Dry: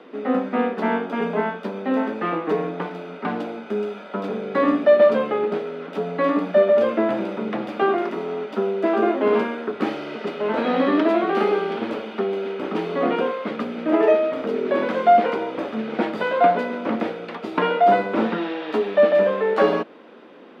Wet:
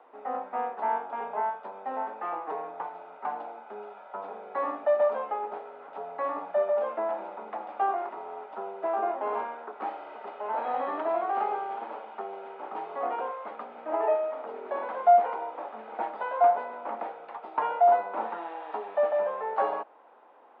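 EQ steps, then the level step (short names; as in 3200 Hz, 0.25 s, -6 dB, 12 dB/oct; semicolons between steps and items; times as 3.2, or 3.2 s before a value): band-pass 830 Hz, Q 4; air absorption 220 m; tilt +3 dB/oct; +2.5 dB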